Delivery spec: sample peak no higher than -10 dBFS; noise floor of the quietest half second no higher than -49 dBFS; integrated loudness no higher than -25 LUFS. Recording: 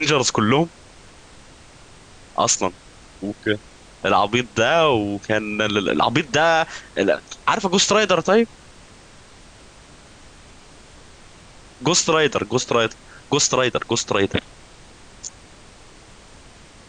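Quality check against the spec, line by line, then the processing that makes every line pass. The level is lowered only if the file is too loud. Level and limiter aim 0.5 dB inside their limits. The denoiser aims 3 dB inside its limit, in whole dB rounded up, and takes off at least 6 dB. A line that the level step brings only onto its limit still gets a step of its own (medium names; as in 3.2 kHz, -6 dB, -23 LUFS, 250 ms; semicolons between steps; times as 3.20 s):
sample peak -5.0 dBFS: fail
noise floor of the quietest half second -46 dBFS: fail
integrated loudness -19.5 LUFS: fail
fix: trim -6 dB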